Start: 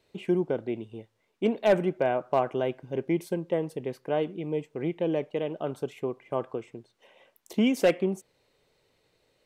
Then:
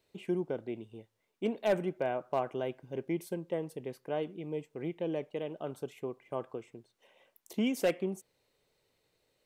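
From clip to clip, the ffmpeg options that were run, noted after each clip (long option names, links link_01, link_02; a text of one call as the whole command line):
ffmpeg -i in.wav -af "highshelf=frequency=8100:gain=8.5,volume=-7dB" out.wav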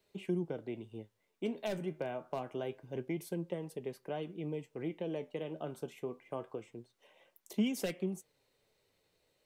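ffmpeg -i in.wav -filter_complex "[0:a]flanger=delay=4.9:depth=8:regen=62:speed=0.26:shape=sinusoidal,acrossover=split=240|3000[link_01][link_02][link_03];[link_02]acompressor=threshold=-40dB:ratio=6[link_04];[link_01][link_04][link_03]amix=inputs=3:normalize=0,volume=4dB" out.wav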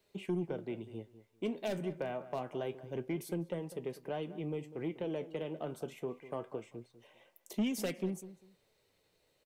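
ffmpeg -i in.wav -filter_complex "[0:a]asoftclip=type=tanh:threshold=-27.5dB,asplit=2[link_01][link_02];[link_02]adelay=198,lowpass=frequency=1900:poles=1,volume=-14.5dB,asplit=2[link_03][link_04];[link_04]adelay=198,lowpass=frequency=1900:poles=1,volume=0.23[link_05];[link_01][link_03][link_05]amix=inputs=3:normalize=0,volume=1.5dB" out.wav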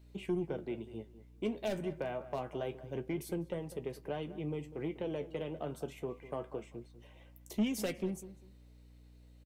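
ffmpeg -i in.wav -filter_complex "[0:a]aeval=exprs='val(0)+0.00141*(sin(2*PI*60*n/s)+sin(2*PI*2*60*n/s)/2+sin(2*PI*3*60*n/s)/3+sin(2*PI*4*60*n/s)/4+sin(2*PI*5*60*n/s)/5)':channel_layout=same,asplit=2[link_01][link_02];[link_02]adelay=14,volume=-12dB[link_03];[link_01][link_03]amix=inputs=2:normalize=0" out.wav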